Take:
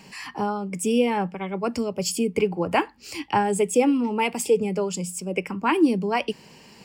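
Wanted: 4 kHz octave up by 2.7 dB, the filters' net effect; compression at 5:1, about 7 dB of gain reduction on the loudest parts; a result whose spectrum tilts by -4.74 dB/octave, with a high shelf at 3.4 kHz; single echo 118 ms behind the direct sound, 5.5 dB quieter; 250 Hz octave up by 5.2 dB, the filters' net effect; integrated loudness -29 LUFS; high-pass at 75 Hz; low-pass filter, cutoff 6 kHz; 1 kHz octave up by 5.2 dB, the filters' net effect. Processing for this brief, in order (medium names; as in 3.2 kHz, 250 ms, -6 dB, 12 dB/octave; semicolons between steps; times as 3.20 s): high-pass 75 Hz; low-pass 6 kHz; peaking EQ 250 Hz +6 dB; peaking EQ 1 kHz +6 dB; treble shelf 3.4 kHz -4.5 dB; peaking EQ 4 kHz +8 dB; compression 5:1, threshold -17 dBFS; delay 118 ms -5.5 dB; trim -6.5 dB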